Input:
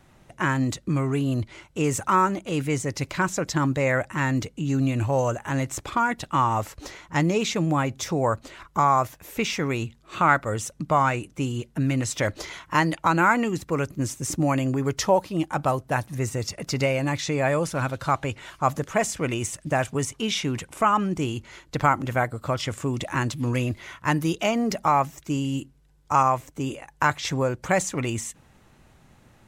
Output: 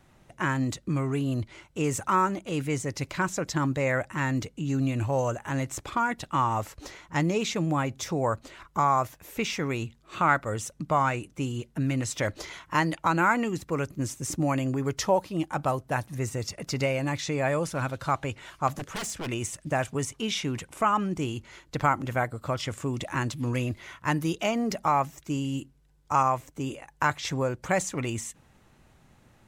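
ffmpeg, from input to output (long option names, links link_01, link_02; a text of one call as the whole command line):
ffmpeg -i in.wav -filter_complex "[0:a]asplit=3[link_01][link_02][link_03];[link_01]afade=type=out:start_time=18.67:duration=0.02[link_04];[link_02]aeval=exprs='0.0596*(abs(mod(val(0)/0.0596+3,4)-2)-1)':channel_layout=same,afade=type=in:start_time=18.67:duration=0.02,afade=type=out:start_time=19.26:duration=0.02[link_05];[link_03]afade=type=in:start_time=19.26:duration=0.02[link_06];[link_04][link_05][link_06]amix=inputs=3:normalize=0,volume=-3.5dB" out.wav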